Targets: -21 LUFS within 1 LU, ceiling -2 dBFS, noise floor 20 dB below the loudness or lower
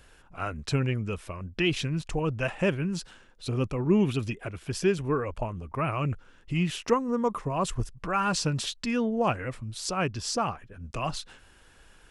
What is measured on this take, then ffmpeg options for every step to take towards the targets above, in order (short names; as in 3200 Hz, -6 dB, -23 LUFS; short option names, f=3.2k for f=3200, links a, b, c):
loudness -29.5 LUFS; peak -11.5 dBFS; loudness target -21.0 LUFS
-> -af "volume=8.5dB"